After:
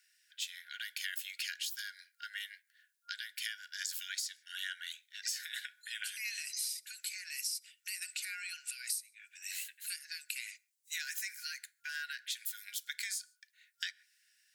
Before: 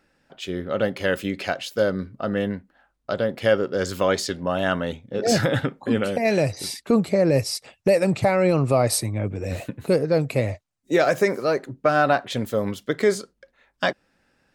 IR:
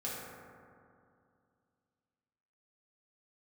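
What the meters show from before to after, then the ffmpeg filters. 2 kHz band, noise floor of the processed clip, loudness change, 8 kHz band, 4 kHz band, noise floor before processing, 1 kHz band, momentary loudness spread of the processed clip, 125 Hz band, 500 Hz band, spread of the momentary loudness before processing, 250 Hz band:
-12.5 dB, -79 dBFS, -17.0 dB, -5.5 dB, -6.5 dB, -70 dBFS, -30.5 dB, 7 LU, under -40 dB, under -40 dB, 10 LU, under -40 dB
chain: -filter_complex "[0:a]aderivative,afreqshift=120,asplit=2[a][b];[1:a]atrim=start_sample=2205,afade=t=out:st=0.21:d=0.01,atrim=end_sample=9702[c];[b][c]afir=irnorm=-1:irlink=0,volume=-24dB[d];[a][d]amix=inputs=2:normalize=0,acompressor=threshold=-40dB:ratio=16,afftfilt=real='re*(1-between(b*sr/4096,120,1400))':imag='im*(1-between(b*sr/4096,120,1400))':win_size=4096:overlap=0.75,volume=5.5dB"

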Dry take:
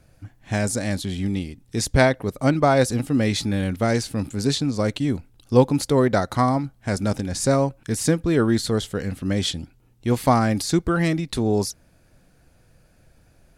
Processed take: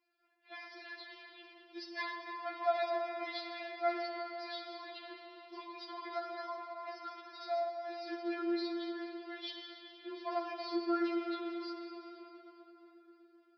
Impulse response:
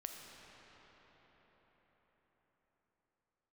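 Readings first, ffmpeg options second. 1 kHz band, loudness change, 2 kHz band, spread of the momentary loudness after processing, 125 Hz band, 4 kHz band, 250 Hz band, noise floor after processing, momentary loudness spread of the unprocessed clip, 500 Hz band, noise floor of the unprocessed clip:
-13.0 dB, -17.5 dB, -15.0 dB, 17 LU, under -40 dB, -15.0 dB, -19.0 dB, -65 dBFS, 9 LU, -16.5 dB, -57 dBFS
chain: -filter_complex "[0:a]highpass=480,flanger=delay=7.7:depth=6.2:regen=-56:speed=0.57:shape=triangular[a];[1:a]atrim=start_sample=2205,asetrate=57330,aresample=44100[b];[a][b]afir=irnorm=-1:irlink=0,aresample=11025,aresample=44100,afftfilt=real='re*4*eq(mod(b,16),0)':imag='im*4*eq(mod(b,16),0)':win_size=2048:overlap=0.75,volume=-2.5dB"

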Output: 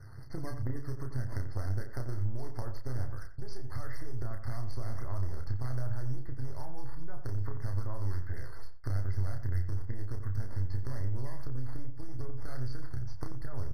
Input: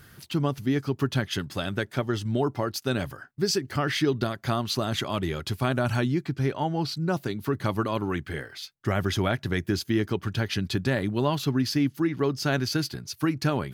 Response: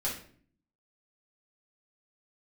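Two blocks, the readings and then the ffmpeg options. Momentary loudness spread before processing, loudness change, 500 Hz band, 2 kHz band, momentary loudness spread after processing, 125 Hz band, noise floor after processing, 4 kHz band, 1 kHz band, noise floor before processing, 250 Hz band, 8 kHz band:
5 LU, -11.5 dB, -19.0 dB, -19.0 dB, 9 LU, -5.5 dB, -35 dBFS, -26.0 dB, -18.0 dB, -55 dBFS, -19.5 dB, under -20 dB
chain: -filter_complex "[0:a]aeval=exprs='if(lt(val(0),0),0.251*val(0),val(0))':c=same,asubboost=boost=4:cutoff=84,adynamicsmooth=sensitivity=2:basefreq=2.8k,alimiter=limit=-17.5dB:level=0:latency=1:release=153,acompressor=threshold=-31dB:ratio=6,acrusher=samples=9:mix=1:aa=0.000001:lfo=1:lforange=14.4:lforate=2.5,aeval=exprs='0.0944*(cos(1*acos(clip(val(0)/0.0944,-1,1)))-cos(1*PI/2))+0.0106*(cos(2*acos(clip(val(0)/0.0944,-1,1)))-cos(2*PI/2))+0.0188*(cos(4*acos(clip(val(0)/0.0944,-1,1)))-cos(4*PI/2))':c=same,lowshelf=f=140:t=q:w=3:g=6,asplit=2[a][b];[b]adelay=31,volume=-5.5dB[c];[a][c]amix=inputs=2:normalize=0,asplit=2[d][e];[e]adelay=88,lowpass=f=1.8k:p=1,volume=-9dB,asplit=2[f][g];[g]adelay=88,lowpass=f=1.8k:p=1,volume=0.2,asplit=2[h][i];[i]adelay=88,lowpass=f=1.8k:p=1,volume=0.2[j];[d][f][h][j]amix=inputs=4:normalize=0,aresample=32000,aresample=44100,afftfilt=real='re*eq(mod(floor(b*sr/1024/2100),2),0)':imag='im*eq(mod(floor(b*sr/1024/2100),2),0)':win_size=1024:overlap=0.75"

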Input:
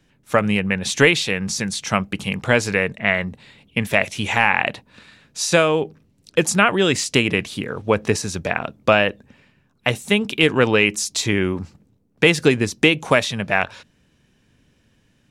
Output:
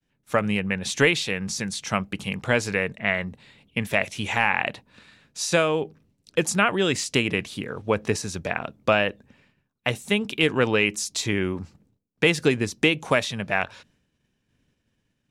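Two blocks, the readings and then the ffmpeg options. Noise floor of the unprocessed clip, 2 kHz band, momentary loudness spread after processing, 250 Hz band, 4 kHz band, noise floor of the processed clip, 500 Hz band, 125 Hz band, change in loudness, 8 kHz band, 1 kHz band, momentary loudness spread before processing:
-61 dBFS, -5.0 dB, 10 LU, -5.0 dB, -5.0 dB, -75 dBFS, -5.0 dB, -5.0 dB, -5.0 dB, -5.0 dB, -5.0 dB, 10 LU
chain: -af "agate=range=-33dB:threshold=-53dB:ratio=3:detection=peak,volume=-5dB"

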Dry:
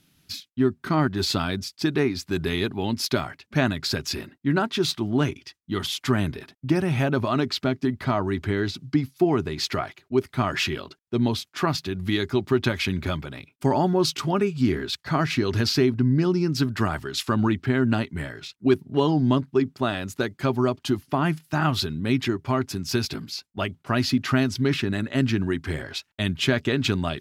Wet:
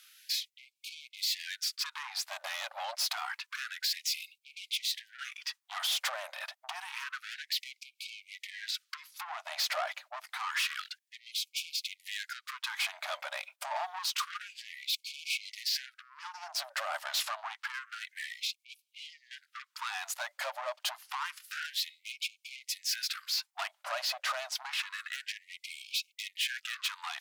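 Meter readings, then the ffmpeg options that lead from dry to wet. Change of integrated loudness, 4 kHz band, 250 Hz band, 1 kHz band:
-10.5 dB, -3.5 dB, under -40 dB, -10.5 dB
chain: -af "acompressor=threshold=-27dB:ratio=20,asoftclip=type=tanh:threshold=-35dB,afftfilt=real='re*gte(b*sr/1024,520*pow(2200/520,0.5+0.5*sin(2*PI*0.28*pts/sr)))':imag='im*gte(b*sr/1024,520*pow(2200/520,0.5+0.5*sin(2*PI*0.28*pts/sr)))':win_size=1024:overlap=0.75,volume=7.5dB"

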